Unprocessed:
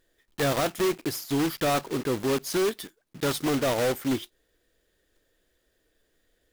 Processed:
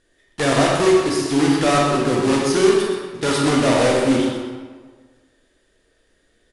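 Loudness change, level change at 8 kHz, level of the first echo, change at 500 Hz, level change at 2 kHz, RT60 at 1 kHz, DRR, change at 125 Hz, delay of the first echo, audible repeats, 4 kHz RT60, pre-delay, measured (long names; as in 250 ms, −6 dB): +9.5 dB, +8.0 dB, −8.5 dB, +10.0 dB, +9.5 dB, 1.5 s, −3.0 dB, +9.0 dB, 125 ms, 1, 0.95 s, 24 ms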